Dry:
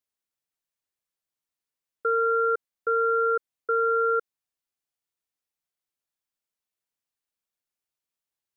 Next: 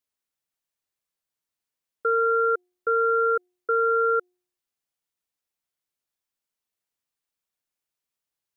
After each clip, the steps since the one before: de-hum 359 Hz, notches 2; trim +1.5 dB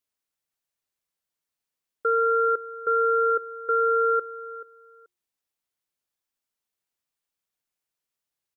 feedback delay 432 ms, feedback 18%, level -16 dB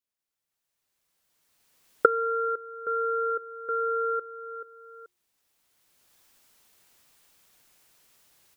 recorder AGC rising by 15 dB/s; trim -6 dB

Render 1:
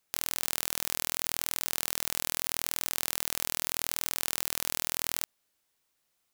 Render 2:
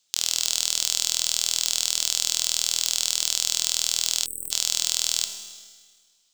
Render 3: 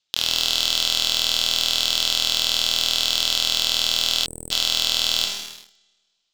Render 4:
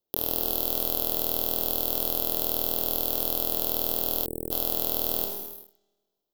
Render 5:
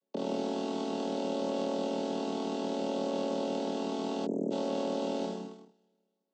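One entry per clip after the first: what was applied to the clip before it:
high-order bell 4.8 kHz +16 dB; Schroeder reverb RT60 1.6 s, combs from 26 ms, DRR 7.5 dB; spectral selection erased 4.25–4.51 s, 520–7900 Hz; trim -2.5 dB
Chebyshev low-pass 3.5 kHz, order 2; waveshaping leveller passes 3; trim +3.5 dB
FFT filter 190 Hz 0 dB, 400 Hz +10 dB, 790 Hz 0 dB, 2.2 kHz -22 dB, 7.7 kHz -16 dB, 13 kHz +12 dB
vocoder on a held chord minor triad, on F#3; trim +3.5 dB

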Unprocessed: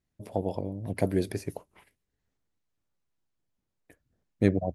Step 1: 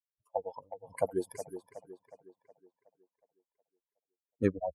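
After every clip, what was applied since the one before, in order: expander on every frequency bin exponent 3; graphic EQ 125/500/1000/4000/8000 Hz -4/+5/+11/-9/+10 dB; tape echo 367 ms, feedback 50%, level -10 dB, low-pass 3.6 kHz; trim -4 dB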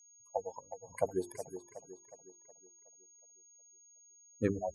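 bass shelf 92 Hz +6.5 dB; hum notches 50/100/150/200/250/300/350/400 Hz; whistle 6.6 kHz -57 dBFS; trim -2 dB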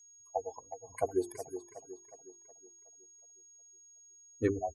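comb 2.7 ms, depth 68%

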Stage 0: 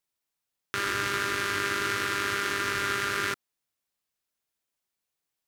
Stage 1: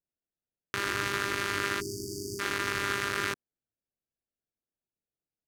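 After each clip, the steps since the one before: local Wiener filter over 41 samples; spectral selection erased 1.81–2.40 s, 440–4500 Hz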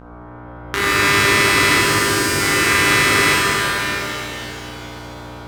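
level rider gain up to 11.5 dB; mains buzz 60 Hz, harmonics 26, -41 dBFS -4 dB/octave; pitch-shifted reverb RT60 3.3 s, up +7 st, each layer -8 dB, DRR -7 dB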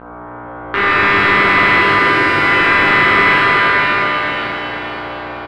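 overdrive pedal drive 17 dB, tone 6 kHz, clips at -1 dBFS; distance through air 430 m; feedback delay 486 ms, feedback 45%, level -8.5 dB; trim +1 dB

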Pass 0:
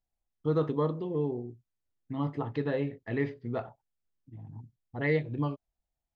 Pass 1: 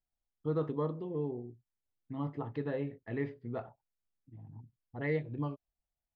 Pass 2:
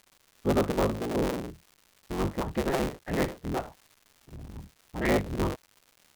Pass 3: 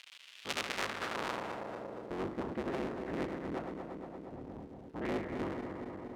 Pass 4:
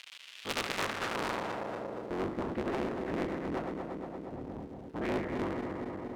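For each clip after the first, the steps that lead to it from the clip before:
treble shelf 3.9 kHz -10 dB; trim -5 dB
cycle switcher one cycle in 3, inverted; crackle 320 per s -52 dBFS; trim +7.5 dB
backward echo that repeats 117 ms, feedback 78%, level -10 dB; band-pass sweep 2.9 kHz -> 310 Hz, 0.49–2.35 s; spectrum-flattening compressor 2:1; trim +3 dB
one-sided clip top -36 dBFS; trim +4.5 dB

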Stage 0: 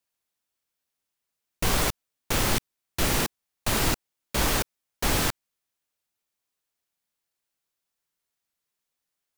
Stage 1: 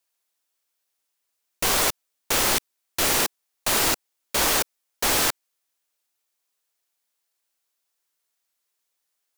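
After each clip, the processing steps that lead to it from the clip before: tone controls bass -13 dB, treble +3 dB; trim +3.5 dB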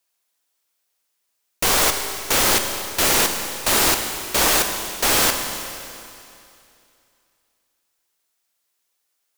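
Schroeder reverb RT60 2.6 s, combs from 31 ms, DRR 5.5 dB; trim +3.5 dB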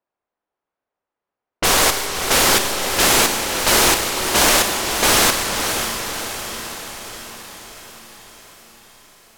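level-controlled noise filter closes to 990 Hz, open at -19 dBFS; echo that smears into a reverb 559 ms, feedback 58%, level -7 dB; loudspeaker Doppler distortion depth 0.34 ms; trim +3.5 dB

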